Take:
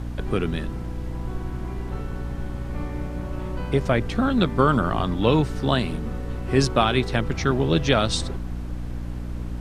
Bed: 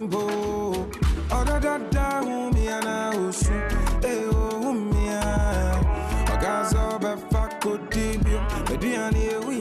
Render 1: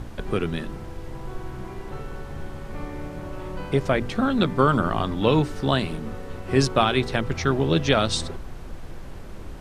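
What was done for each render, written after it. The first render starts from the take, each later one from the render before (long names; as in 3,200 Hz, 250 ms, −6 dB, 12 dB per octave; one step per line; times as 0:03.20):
mains-hum notches 60/120/180/240/300 Hz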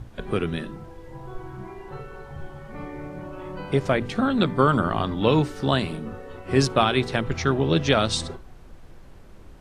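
noise reduction from a noise print 9 dB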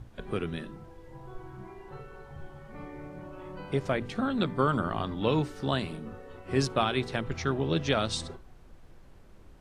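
level −7 dB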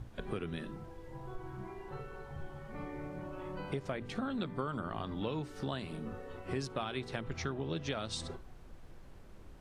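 downward compressor 4 to 1, threshold −35 dBFS, peak gain reduction 13 dB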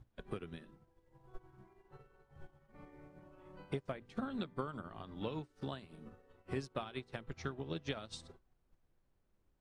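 expander for the loud parts 2.5 to 1, over −49 dBFS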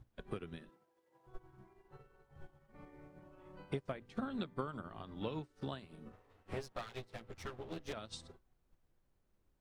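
0:00.69–0:01.27: high-pass filter 370 Hz
0:06.12–0:07.93: lower of the sound and its delayed copy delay 9.7 ms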